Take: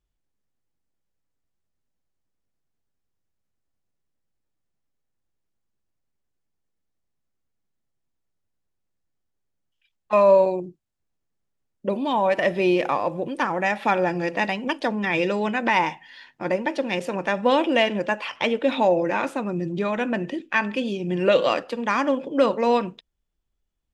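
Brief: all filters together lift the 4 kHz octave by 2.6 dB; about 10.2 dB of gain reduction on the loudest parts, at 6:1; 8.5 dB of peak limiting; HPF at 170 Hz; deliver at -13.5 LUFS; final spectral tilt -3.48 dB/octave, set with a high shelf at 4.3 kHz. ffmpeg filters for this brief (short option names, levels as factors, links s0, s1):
-af "highpass=170,equalizer=f=4000:t=o:g=8,highshelf=f=4300:g=-8,acompressor=threshold=0.0708:ratio=6,volume=6.68,alimiter=limit=0.75:level=0:latency=1"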